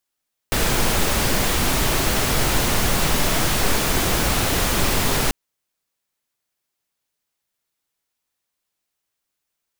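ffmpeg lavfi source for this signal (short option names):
-f lavfi -i "anoisesrc=c=pink:a=0.575:d=4.79:r=44100:seed=1"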